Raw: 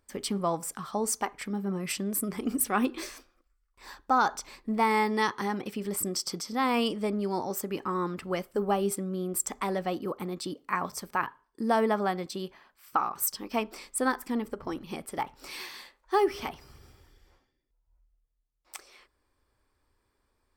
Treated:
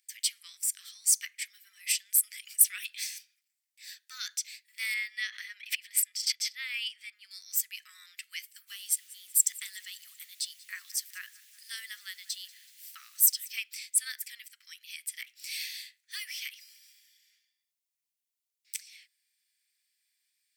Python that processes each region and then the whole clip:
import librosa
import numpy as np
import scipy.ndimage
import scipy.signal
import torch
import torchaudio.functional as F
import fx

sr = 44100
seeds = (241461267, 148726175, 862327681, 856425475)

y = fx.chain(x, sr, fx.bass_treble(bass_db=14, treble_db=-13),
    fx.pre_swell(db_per_s=90.0), at=(4.94, 7.31))
y = fx.peak_eq(y, sr, hz=2400.0, db=-9.0, octaves=0.29, at=(8.67, 13.51), fade=0.02)
y = fx.dmg_noise_colour(y, sr, seeds[0], colour='pink', level_db=-60.0, at=(8.67, 13.51), fade=0.02)
y = fx.echo_feedback(y, sr, ms=188, feedback_pct=53, wet_db=-21.5, at=(8.67, 13.51), fade=0.02)
y = scipy.signal.sosfilt(scipy.signal.butter(8, 1900.0, 'highpass', fs=sr, output='sos'), y)
y = fx.high_shelf(y, sr, hz=3600.0, db=8.5)